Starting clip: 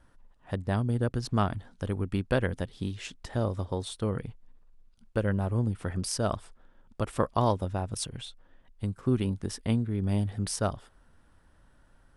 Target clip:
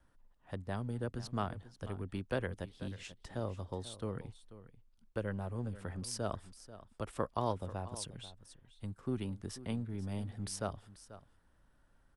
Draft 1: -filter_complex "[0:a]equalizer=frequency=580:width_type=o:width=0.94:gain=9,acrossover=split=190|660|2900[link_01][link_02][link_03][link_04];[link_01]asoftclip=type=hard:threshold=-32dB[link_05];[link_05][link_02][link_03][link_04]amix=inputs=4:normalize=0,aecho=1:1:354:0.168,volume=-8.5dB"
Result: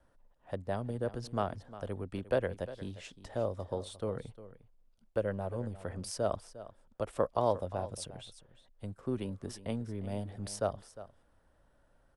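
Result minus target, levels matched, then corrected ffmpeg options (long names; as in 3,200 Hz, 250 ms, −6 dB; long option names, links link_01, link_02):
echo 134 ms early; 500 Hz band +3.5 dB
-filter_complex "[0:a]acrossover=split=190|660|2900[link_01][link_02][link_03][link_04];[link_01]asoftclip=type=hard:threshold=-32dB[link_05];[link_05][link_02][link_03][link_04]amix=inputs=4:normalize=0,aecho=1:1:488:0.168,volume=-8.5dB"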